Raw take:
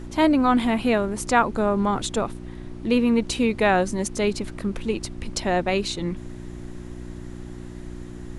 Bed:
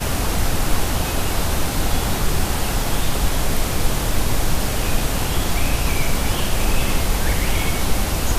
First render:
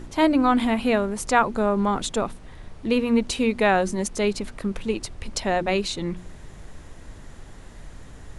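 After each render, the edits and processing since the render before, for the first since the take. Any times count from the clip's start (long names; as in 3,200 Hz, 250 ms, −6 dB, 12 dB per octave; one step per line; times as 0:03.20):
hum removal 60 Hz, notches 6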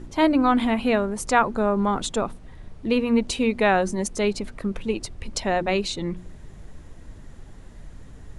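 broadband denoise 6 dB, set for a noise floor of −44 dBFS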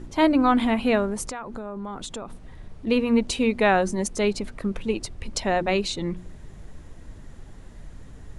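0:01.29–0:02.87: downward compressor, threshold −31 dBFS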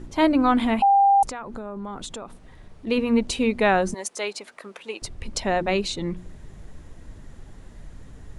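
0:00.82–0:01.23: beep over 795 Hz −13 dBFS
0:02.15–0:02.98: low-shelf EQ 240 Hz −5.5 dB
0:03.94–0:05.02: high-pass filter 620 Hz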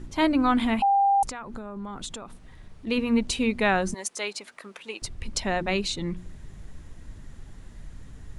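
parametric band 540 Hz −5.5 dB 1.9 octaves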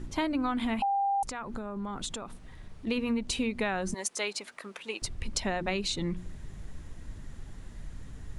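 downward compressor 12 to 1, threshold −26 dBFS, peak gain reduction 9.5 dB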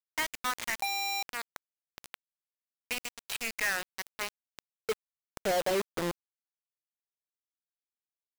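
band-pass filter sweep 1,900 Hz → 510 Hz, 0:03.93–0:04.81
log-companded quantiser 2 bits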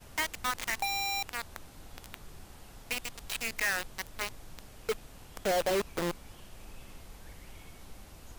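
mix in bed −30 dB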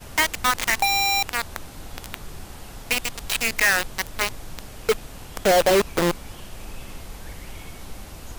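level +11.5 dB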